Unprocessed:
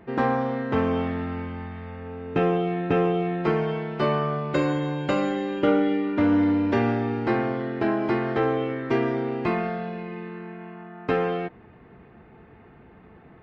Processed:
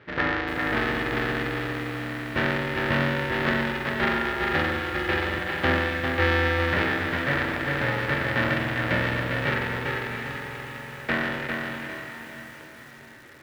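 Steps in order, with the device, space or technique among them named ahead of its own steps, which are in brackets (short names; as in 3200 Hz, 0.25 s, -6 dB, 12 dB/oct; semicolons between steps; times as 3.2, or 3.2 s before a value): 5.38–6.77 steep high-pass 270 Hz 96 dB/oct; ring modulator pedal into a guitar cabinet (polarity switched at an audio rate 210 Hz; speaker cabinet 99–3700 Hz, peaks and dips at 200 Hz -8 dB, 450 Hz -7 dB, 670 Hz -9 dB, 1000 Hz -8 dB, 1800 Hz +9 dB); diffused feedback echo 0.708 s, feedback 44%, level -10 dB; lo-fi delay 0.4 s, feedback 35%, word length 8-bit, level -4 dB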